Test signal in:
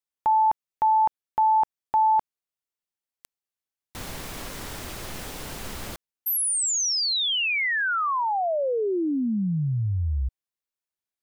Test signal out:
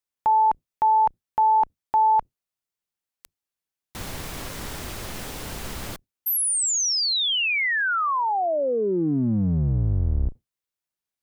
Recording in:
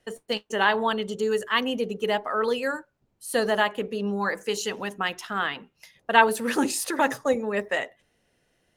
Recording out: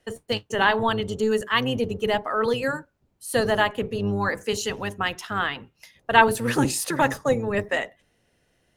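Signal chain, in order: octave divider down 1 oct, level -3 dB; trim +1.5 dB

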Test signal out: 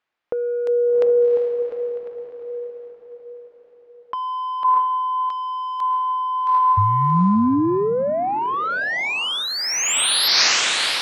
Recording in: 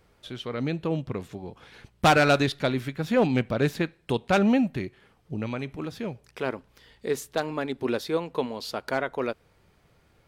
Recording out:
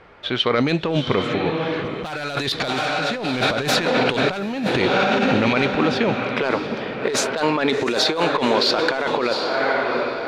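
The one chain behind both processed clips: dynamic bell 4.2 kHz, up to +5 dB, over -49 dBFS, Q 2.6; echo that smears into a reverb 748 ms, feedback 41%, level -9 dB; level-controlled noise filter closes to 2.3 kHz, open at -18.5 dBFS; overdrive pedal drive 14 dB, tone 7.5 kHz, clips at -10 dBFS; compressor with a negative ratio -28 dBFS, ratio -1; trim +7.5 dB

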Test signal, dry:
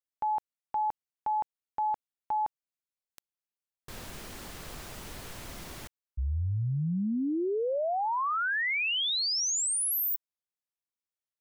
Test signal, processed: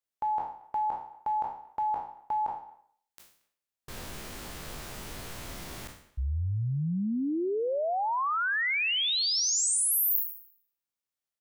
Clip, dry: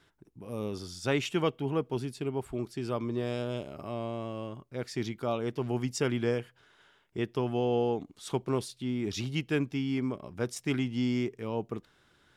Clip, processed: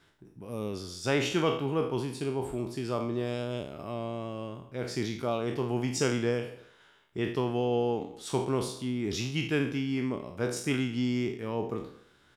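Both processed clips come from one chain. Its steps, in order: spectral sustain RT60 0.56 s; speakerphone echo 230 ms, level -22 dB

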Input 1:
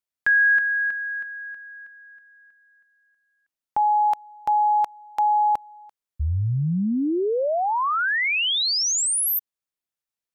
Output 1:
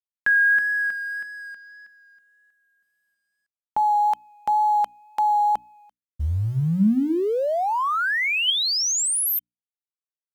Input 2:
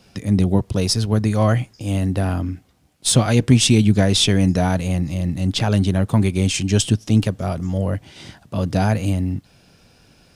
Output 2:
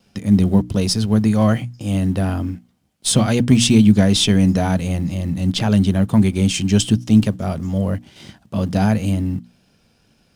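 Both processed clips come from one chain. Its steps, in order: companding laws mixed up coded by A; hum notches 60/120/180/240/300 Hz; wow and flutter 19 cents; in parallel at -9.5 dB: saturation -15.5 dBFS; on the sum: small resonant body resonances 210/3100 Hz, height 7 dB; trim -2 dB

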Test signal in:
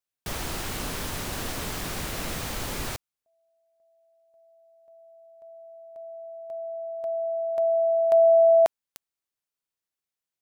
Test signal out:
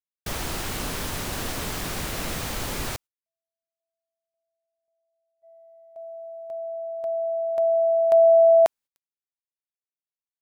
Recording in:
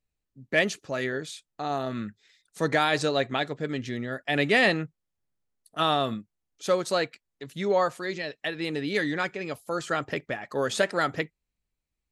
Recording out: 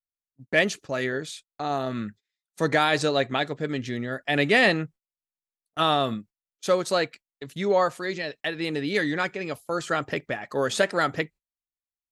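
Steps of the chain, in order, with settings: gate -46 dBFS, range -27 dB; trim +2 dB

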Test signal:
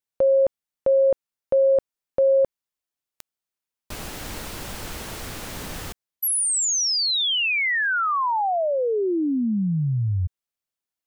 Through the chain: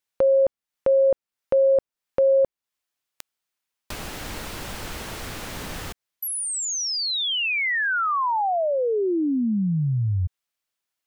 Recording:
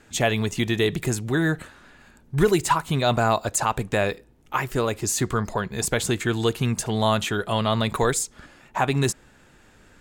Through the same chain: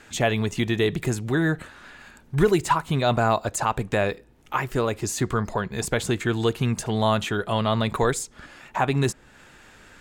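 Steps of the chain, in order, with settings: treble shelf 4.2 kHz -6.5 dB; tape noise reduction on one side only encoder only

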